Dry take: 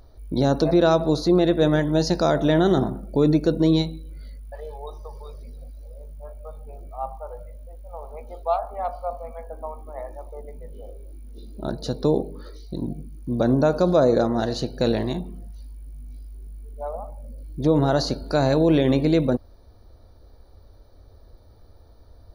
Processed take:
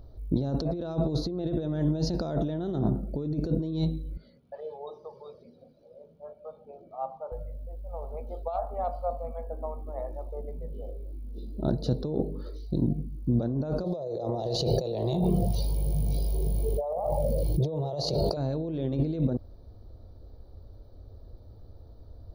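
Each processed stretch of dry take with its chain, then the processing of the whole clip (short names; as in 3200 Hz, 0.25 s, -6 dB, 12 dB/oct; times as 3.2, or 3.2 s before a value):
4.17–7.32 three-band isolator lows -17 dB, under 160 Hz, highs -19 dB, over 5500 Hz + notches 50/100/150/200/250/300/350/400/450/500 Hz
13.84–18.37 HPF 150 Hz + fixed phaser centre 630 Hz, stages 4 + fast leveller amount 70%
whole clip: high shelf 5600 Hz -8 dB; negative-ratio compressor -25 dBFS, ratio -1; graphic EQ 125/1000/2000/8000 Hz +5/-5/-11/-9 dB; gain -3 dB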